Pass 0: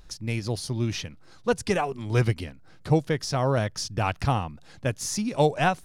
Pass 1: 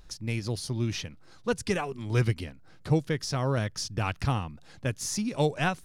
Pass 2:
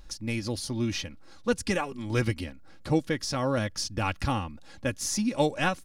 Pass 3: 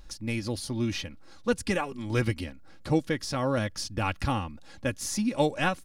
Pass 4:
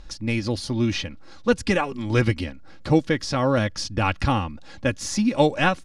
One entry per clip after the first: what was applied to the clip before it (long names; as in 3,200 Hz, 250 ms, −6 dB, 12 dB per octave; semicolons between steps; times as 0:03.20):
dynamic equaliser 710 Hz, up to −6 dB, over −39 dBFS, Q 1.4; level −2 dB
comb filter 3.6 ms, depth 53%; level +1 dB
dynamic equaliser 5,900 Hz, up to −4 dB, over −46 dBFS, Q 1.8
low-pass filter 6,500 Hz 12 dB per octave; level +6.5 dB